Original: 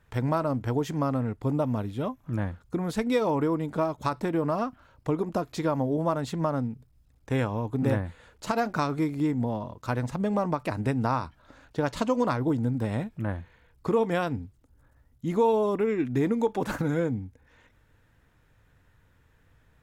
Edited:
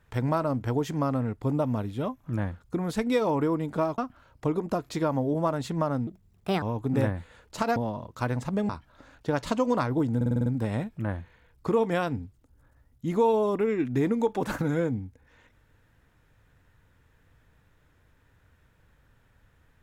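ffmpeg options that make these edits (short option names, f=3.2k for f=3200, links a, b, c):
-filter_complex "[0:a]asplit=12[a][b][c][d][e][f][g][h][i][j][k][l];[a]atrim=end=3.982[m];[b]atrim=start=4.608:end=6.704[n];[c]atrim=start=6.7:end=7.51,asetpts=PTS-STARTPTS,asetrate=64827,aresample=44100[o];[d]atrim=start=7.506:end=8.652[p];[e]atrim=start=9.428:end=10.362[q];[f]atrim=start=11.188:end=12.712[r];[g]atrim=start=12.658:end=12.712[s];[h]atrim=start=12.658:end=12.712[t];[i]atrim=start=12.658:end=12.712[u];[j]atrim=start=12.658:end=12.712[v];[k]atrim=start=12.658:end=12.712[w];[l]atrim=start=12.658[x];[m][n]acrossfade=d=0.004:c1=hsin:c2=hsin[y];[y][o]acrossfade=d=0.004:c1=hsin:c2=hsin[z];[z][p]acrossfade=d=0.004:c1=hsin:c2=hsin[aa];[aa][q]acrossfade=d=0.004:c1=hsin:c2=hsin[ab];[ab][r]acrossfade=d=0.004:c1=hsin:c2=hsin[ac];[ac][s]acrossfade=d=0.004:c1=hsin:c2=hsin[ad];[ad][t]acrossfade=d=0.004:c1=hsin:c2=hsin[ae];[ae][u]acrossfade=d=0.004:c1=hsin:c2=hsin[af];[af][v]acrossfade=d=0.004:c1=hsin:c2=hsin[ag];[ag][w]acrossfade=d=0.004:c1=hsin:c2=hsin[ah];[ah][x]acrossfade=d=0.004:c1=hsin:c2=hsin"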